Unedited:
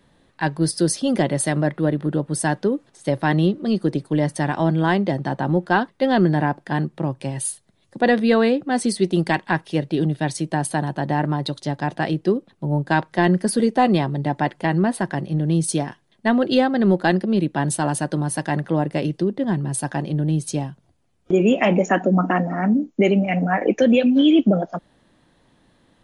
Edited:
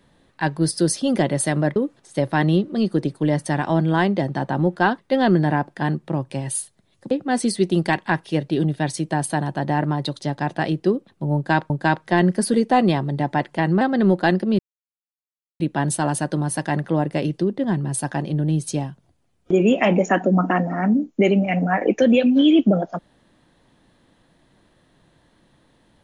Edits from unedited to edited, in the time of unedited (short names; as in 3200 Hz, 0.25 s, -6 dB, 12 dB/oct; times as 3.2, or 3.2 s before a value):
1.76–2.66 cut
8.01–8.52 cut
12.76–13.11 loop, 2 plays
14.87–16.62 cut
17.4 insert silence 1.01 s